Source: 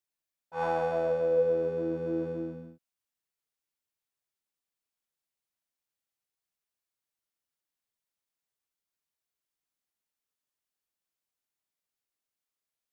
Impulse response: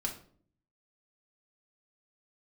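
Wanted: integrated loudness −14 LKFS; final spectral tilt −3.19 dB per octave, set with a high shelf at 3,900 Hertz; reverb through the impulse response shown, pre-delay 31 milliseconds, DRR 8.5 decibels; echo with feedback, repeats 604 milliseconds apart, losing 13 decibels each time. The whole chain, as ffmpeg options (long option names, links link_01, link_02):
-filter_complex "[0:a]highshelf=frequency=3900:gain=8.5,aecho=1:1:604|1208|1812:0.224|0.0493|0.0108,asplit=2[link_01][link_02];[1:a]atrim=start_sample=2205,adelay=31[link_03];[link_02][link_03]afir=irnorm=-1:irlink=0,volume=-10.5dB[link_04];[link_01][link_04]amix=inputs=2:normalize=0,volume=17dB"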